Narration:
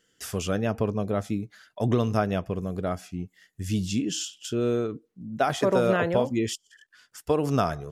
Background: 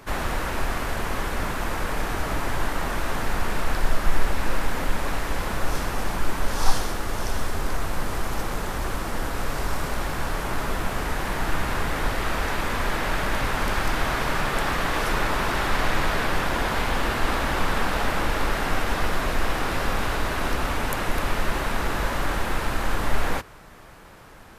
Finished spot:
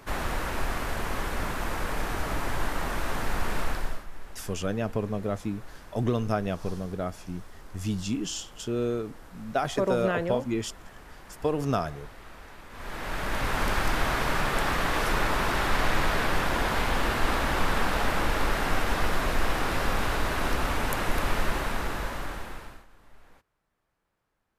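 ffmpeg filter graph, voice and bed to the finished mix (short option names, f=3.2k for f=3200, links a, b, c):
-filter_complex "[0:a]adelay=4150,volume=-3dB[a];[1:a]volume=15.5dB,afade=t=out:st=3.62:d=0.44:silence=0.133352,afade=t=in:st=12.7:d=0.9:silence=0.112202,afade=t=out:st=21.39:d=1.47:silence=0.0316228[b];[a][b]amix=inputs=2:normalize=0"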